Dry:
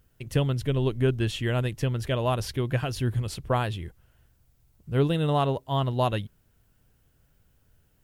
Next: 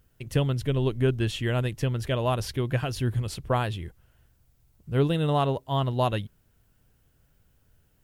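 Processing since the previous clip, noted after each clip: no audible change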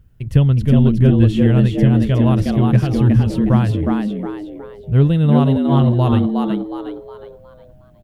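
tone controls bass +13 dB, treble -6 dB; frequency-shifting echo 364 ms, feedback 37%, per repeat +100 Hz, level -3.5 dB; trim +1.5 dB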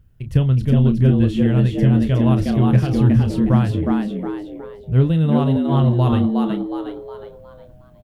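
level rider gain up to 3.5 dB; doubling 31 ms -10.5 dB; trim -3 dB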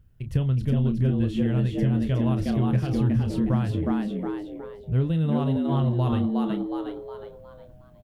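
compression 2:1, threshold -18 dBFS, peak gain reduction 5.5 dB; trim -4 dB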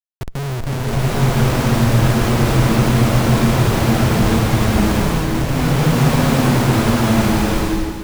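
Schmitt trigger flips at -27.5 dBFS; swelling reverb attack 870 ms, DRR -8.5 dB; trim +2 dB

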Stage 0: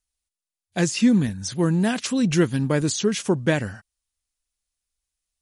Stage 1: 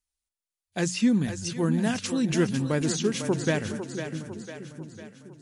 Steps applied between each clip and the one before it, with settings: hum notches 60/120/180 Hz; two-band feedback delay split 340 Hz, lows 654 ms, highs 501 ms, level -8.5 dB; trim -4.5 dB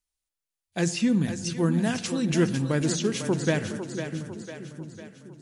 simulated room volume 3300 m³, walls furnished, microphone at 0.68 m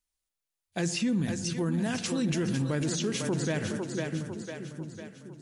peak limiter -21 dBFS, peak gain reduction 11 dB

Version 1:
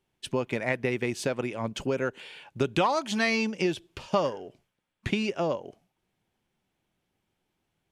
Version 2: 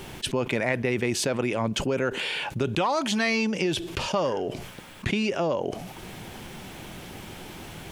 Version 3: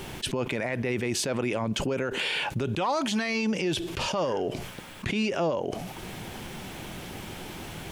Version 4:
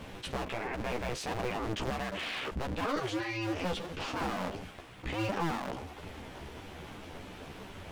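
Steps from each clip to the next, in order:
level flattener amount 70%; trim -2 dB
peak limiter -20.5 dBFS, peak gain reduction 9.5 dB; trim +1.5 dB
cycle switcher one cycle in 2, inverted; chorus voices 2, 1.4 Hz, delay 13 ms, depth 3 ms; low-pass 3.2 kHz 6 dB/octave; trim -3 dB

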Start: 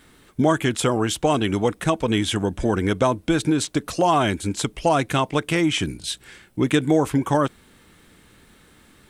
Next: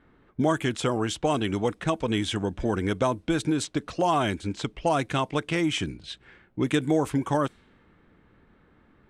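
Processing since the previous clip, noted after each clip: level-controlled noise filter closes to 1.5 kHz, open at -15.5 dBFS; trim -5 dB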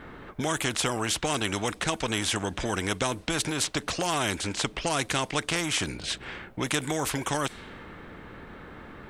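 in parallel at -1 dB: compression, threshold -31 dBFS, peak gain reduction 12.5 dB; on the sum: spectrum-flattening compressor 2:1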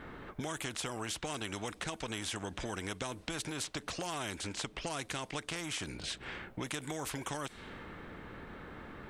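compression 3:1, threshold -34 dBFS, peak gain reduction 9.5 dB; trim -3.5 dB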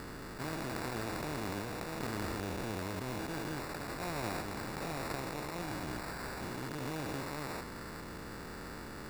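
spectrogram pixelated in time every 400 ms; sample-and-hold 14×; trim +4.5 dB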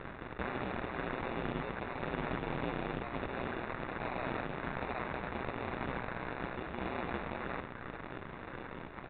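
Chebyshev shaper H 8 -9 dB, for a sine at -23 dBFS; ring modulator 62 Hz; resampled via 8 kHz

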